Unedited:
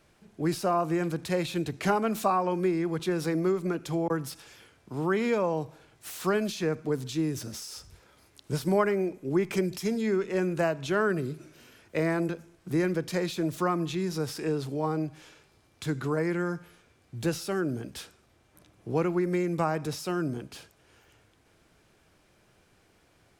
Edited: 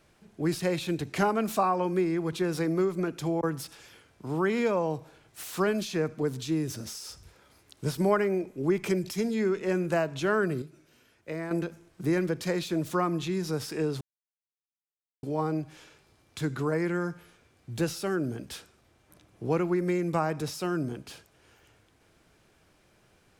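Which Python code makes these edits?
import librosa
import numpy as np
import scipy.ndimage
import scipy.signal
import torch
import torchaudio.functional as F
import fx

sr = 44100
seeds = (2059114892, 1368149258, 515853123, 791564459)

y = fx.edit(x, sr, fx.cut(start_s=0.6, length_s=0.67),
    fx.clip_gain(start_s=11.29, length_s=0.89, db=-8.0),
    fx.insert_silence(at_s=14.68, length_s=1.22), tone=tone)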